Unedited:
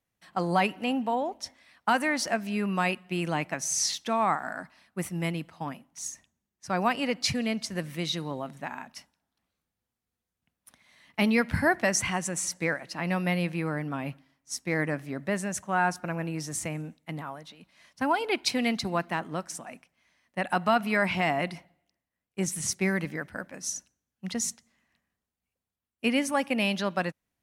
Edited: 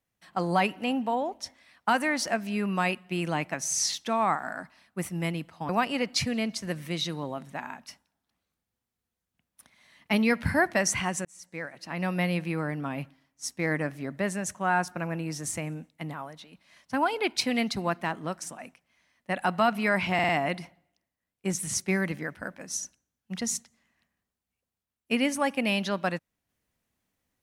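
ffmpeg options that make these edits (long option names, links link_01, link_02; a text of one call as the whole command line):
ffmpeg -i in.wav -filter_complex "[0:a]asplit=6[link_01][link_02][link_03][link_04][link_05][link_06];[link_01]atrim=end=5.692[link_07];[link_02]atrim=start=6.768:end=12.33,asetpts=PTS-STARTPTS,afade=type=out:start_time=5.558:duration=0.004:curve=hsin[link_08];[link_03]atrim=start=12.33:end=21.272,asetpts=PTS-STARTPTS,afade=type=in:duration=0.94[link_09];[link_04]atrim=start=21.218:end=21.272[link_10];[link_05]atrim=start=21.218:end=21.272[link_11];[link_06]atrim=start=21.218[link_12];[link_08][link_09]concat=n=2:v=0:a=1[link_13];[link_07][link_13]acrossfade=duration=0.004:curve1=hsin:curve2=hsin[link_14];[link_14][link_10]acrossfade=duration=0.004:curve1=hsin:curve2=hsin[link_15];[link_15][link_11]acrossfade=duration=0.004:curve1=hsin:curve2=hsin[link_16];[link_16][link_12]acrossfade=duration=0.004:curve1=hsin:curve2=hsin" out.wav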